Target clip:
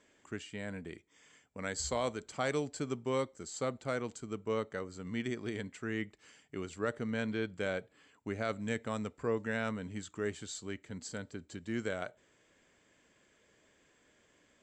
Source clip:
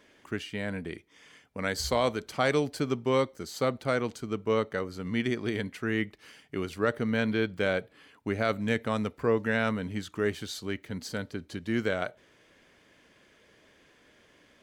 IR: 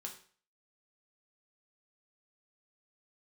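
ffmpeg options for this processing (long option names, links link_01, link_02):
-af "lowpass=frequency=7500:width_type=q:width=12,highshelf=frequency=5900:gain=-12,volume=-7.5dB"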